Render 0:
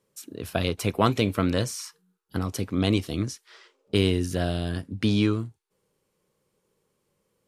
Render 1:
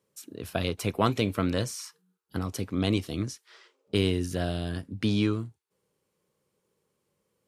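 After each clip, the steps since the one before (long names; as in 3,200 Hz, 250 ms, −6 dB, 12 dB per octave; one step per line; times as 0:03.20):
high-pass filter 52 Hz
level −3 dB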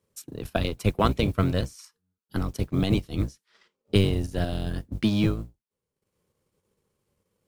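sub-octave generator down 1 octave, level +1 dB
transient designer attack +4 dB, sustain −11 dB
noise that follows the level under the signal 34 dB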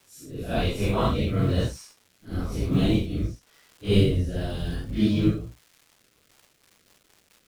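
random phases in long frames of 200 ms
surface crackle 510 per second −45 dBFS
rotating-speaker cabinet horn 1 Hz, later 5 Hz, at 0:05.98
level +2.5 dB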